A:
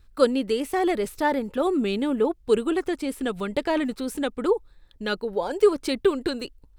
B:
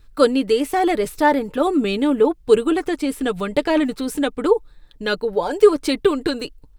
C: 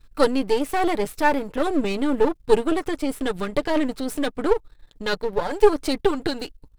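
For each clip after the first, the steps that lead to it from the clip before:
comb filter 6.7 ms, depth 37%; level +5 dB
gain on one half-wave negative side −12 dB

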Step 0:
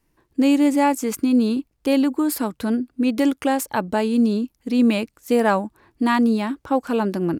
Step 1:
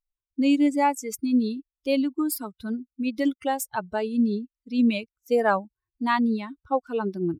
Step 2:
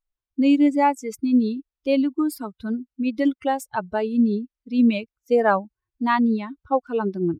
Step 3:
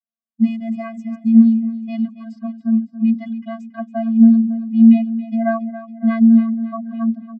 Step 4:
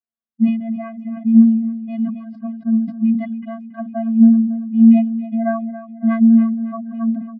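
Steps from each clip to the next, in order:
spectral dynamics exaggerated over time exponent 2; low-shelf EQ 170 Hz −5.5 dB
low-pass filter 2,600 Hz 6 dB per octave; level +3.5 dB
low-pass that shuts in the quiet parts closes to 2,000 Hz, open at −13.5 dBFS; channel vocoder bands 32, square 226 Hz; repeating echo 278 ms, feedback 51%, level −14 dB; level +7 dB
high-frequency loss of the air 440 metres; level that may fall only so fast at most 88 dB per second

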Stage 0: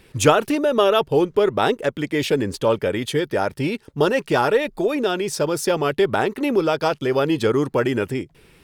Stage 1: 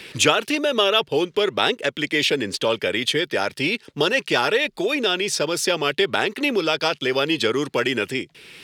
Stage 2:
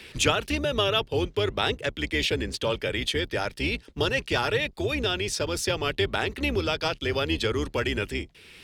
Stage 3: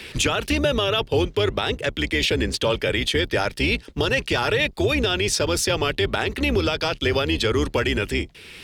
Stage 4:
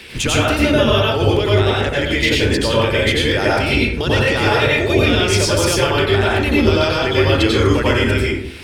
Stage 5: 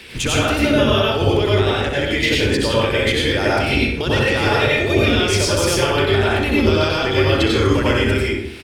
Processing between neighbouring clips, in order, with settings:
meter weighting curve D; multiband upward and downward compressor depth 40%; level −3 dB
sub-octave generator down 2 octaves, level +1 dB; level −6 dB
brickwall limiter −18.5 dBFS, peak gain reduction 10.5 dB; level +7.5 dB
dense smooth reverb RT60 0.75 s, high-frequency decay 0.45×, pre-delay 80 ms, DRR −6 dB
repeating echo 63 ms, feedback 39%, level −9 dB; level −2 dB

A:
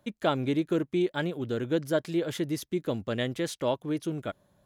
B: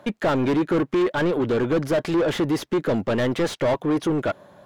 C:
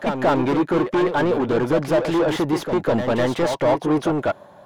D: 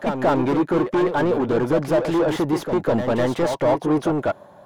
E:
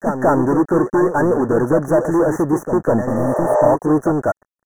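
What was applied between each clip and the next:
mid-hump overdrive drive 31 dB, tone 1,100 Hz, clips at −12 dBFS
parametric band 830 Hz +6.5 dB 0.85 octaves; on a send: backwards echo 201 ms −6.5 dB
parametric band 3,100 Hz −3.5 dB 2.2 octaves
dead-zone distortion −37.5 dBFS; Chebyshev band-stop filter 1,800–5,900 Hz, order 5; healed spectral selection 0:03.11–0:03.65, 350–8,500 Hz both; level +5.5 dB

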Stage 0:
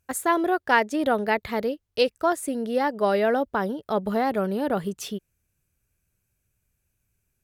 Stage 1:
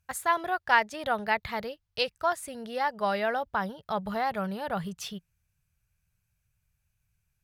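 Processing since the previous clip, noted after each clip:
drawn EQ curve 170 Hz 0 dB, 280 Hz −19 dB, 830 Hz −2 dB, 4,800 Hz −1 dB, 7,600 Hz −6 dB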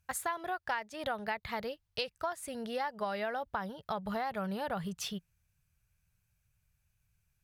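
downward compressor 6 to 1, threshold −32 dBFS, peak gain reduction 15 dB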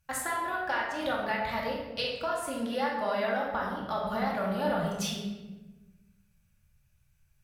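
convolution reverb RT60 1.2 s, pre-delay 3 ms, DRR −4.5 dB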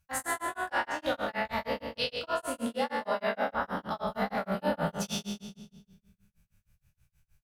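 peak hold with a decay on every bin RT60 1.20 s
amplitude tremolo 6.4 Hz, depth 100%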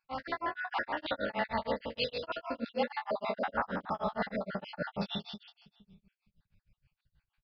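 time-frequency cells dropped at random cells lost 40%
downsampling to 11,025 Hz

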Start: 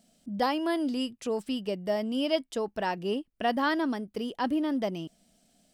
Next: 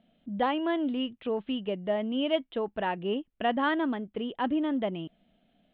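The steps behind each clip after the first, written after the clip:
Butterworth low-pass 3,600 Hz 72 dB per octave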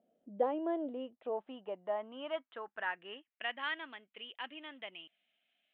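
parametric band 150 Hz −4 dB 1.3 octaves
band-pass filter sweep 470 Hz → 2,500 Hz, 0:00.54–0:03.67
level +1 dB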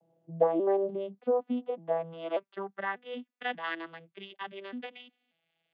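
vocoder with an arpeggio as carrier minor triad, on E3, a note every 590 ms
level +8 dB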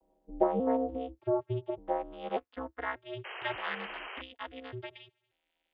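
sound drawn into the spectrogram noise, 0:03.24–0:04.22, 470–3,100 Hz −41 dBFS
ring modulation 130 Hz
level +1 dB

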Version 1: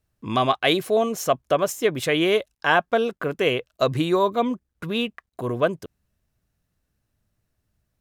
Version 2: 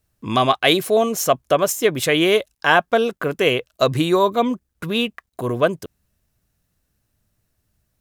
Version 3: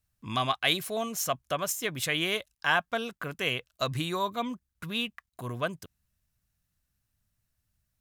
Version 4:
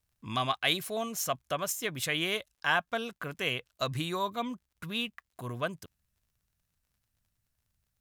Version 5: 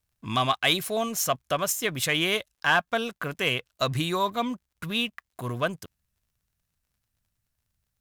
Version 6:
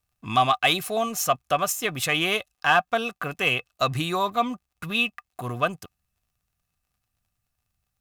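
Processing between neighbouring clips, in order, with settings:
high-shelf EQ 5,400 Hz +6.5 dB; level +3.5 dB
parametric band 420 Hz −11 dB 1.6 octaves; level −7.5 dB
surface crackle 52 per second −59 dBFS; level −2 dB
leveller curve on the samples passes 1; level +2.5 dB
hollow resonant body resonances 750/1,200/2,600 Hz, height 11 dB, ringing for 50 ms

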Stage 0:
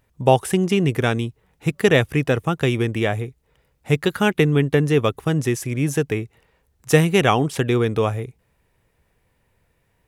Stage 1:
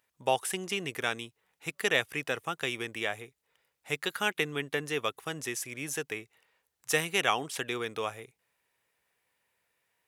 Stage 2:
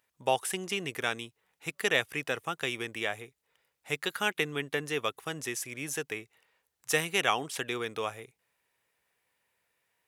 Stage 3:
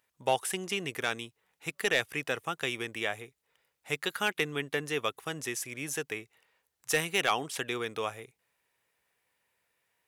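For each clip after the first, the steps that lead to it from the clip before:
high-pass filter 1,500 Hz 6 dB per octave; level −4 dB
no processing that can be heard
gain into a clipping stage and back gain 16.5 dB

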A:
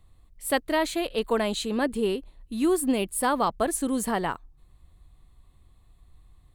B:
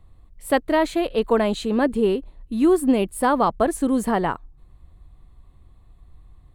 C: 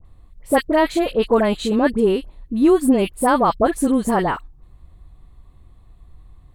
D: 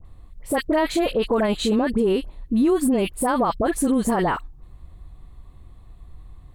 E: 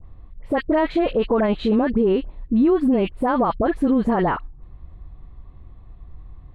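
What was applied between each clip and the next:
high-shelf EQ 2,400 Hz −11 dB; level +6.5 dB
all-pass dispersion highs, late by 51 ms, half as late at 1,400 Hz; level +3 dB
brickwall limiter −15.5 dBFS, peak gain reduction 11 dB; level +2.5 dB
high-frequency loss of the air 370 metres; level +2.5 dB

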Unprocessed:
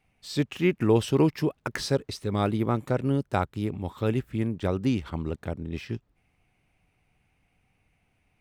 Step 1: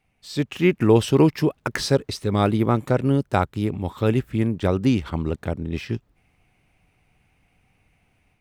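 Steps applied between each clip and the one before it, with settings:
automatic gain control gain up to 6 dB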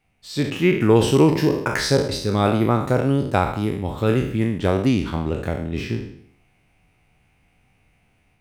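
peak hold with a decay on every bin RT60 0.65 s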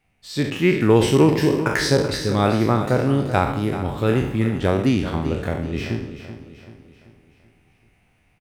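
parametric band 1,800 Hz +3 dB 0.29 octaves
on a send: repeating echo 384 ms, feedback 47%, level −12 dB

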